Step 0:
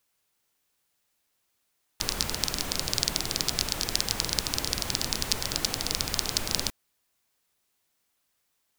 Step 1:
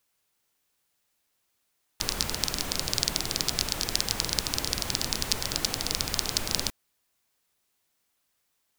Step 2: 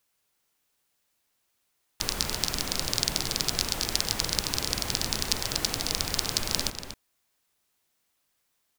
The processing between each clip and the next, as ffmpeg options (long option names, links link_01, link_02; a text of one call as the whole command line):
ffmpeg -i in.wav -af anull out.wav
ffmpeg -i in.wav -filter_complex "[0:a]asplit=2[link_01][link_02];[link_02]adelay=239.1,volume=-8dB,highshelf=frequency=4000:gain=-5.38[link_03];[link_01][link_03]amix=inputs=2:normalize=0" out.wav